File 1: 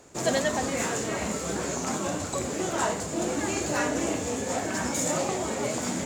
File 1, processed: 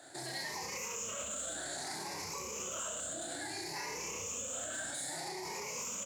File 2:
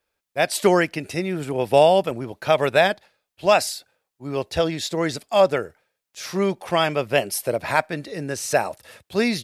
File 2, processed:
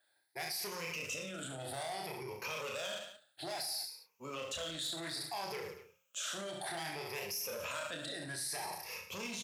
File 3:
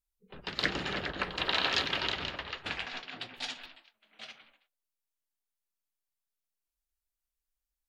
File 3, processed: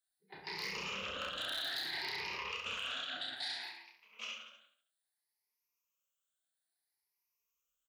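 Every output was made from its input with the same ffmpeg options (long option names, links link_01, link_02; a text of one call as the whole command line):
ffmpeg -i in.wav -filter_complex "[0:a]afftfilt=real='re*pow(10,16/40*sin(2*PI*(0.81*log(max(b,1)*sr/1024/100)/log(2)-(0.61)*(pts-256)/sr)))':imag='im*pow(10,16/40*sin(2*PI*(0.81*log(max(b,1)*sr/1024/100)/log(2)-(0.61)*(pts-256)/sr)))':win_size=1024:overlap=0.75,adynamicequalizer=threshold=0.0158:dfrequency=240:dqfactor=1.8:tfrequency=240:tqfactor=1.8:attack=5:release=100:ratio=0.375:range=3.5:mode=cutabove:tftype=bell,acrossover=split=190|3000[link_01][link_02][link_03];[link_02]acompressor=threshold=-40dB:ratio=1.5[link_04];[link_01][link_04][link_03]amix=inputs=3:normalize=0,acrossover=split=6700[link_05][link_06];[link_05]volume=23dB,asoftclip=hard,volume=-23dB[link_07];[link_07][link_06]amix=inputs=2:normalize=0,acompressor=threshold=-30dB:ratio=6,highpass=66,asplit=2[link_08][link_09];[link_09]adelay=32,volume=-10.5dB[link_10];[link_08][link_10]amix=inputs=2:normalize=0,aecho=1:1:30|67.5|114.4|173|246.2:0.631|0.398|0.251|0.158|0.1,alimiter=level_in=4.5dB:limit=-24dB:level=0:latency=1:release=21,volume=-4.5dB,lowshelf=frequency=430:gain=-11.5,bandreject=frequency=60:width_type=h:width=6,bandreject=frequency=120:width_type=h:width=6,bandreject=frequency=180:width_type=h:width=6,volume=-1.5dB" out.wav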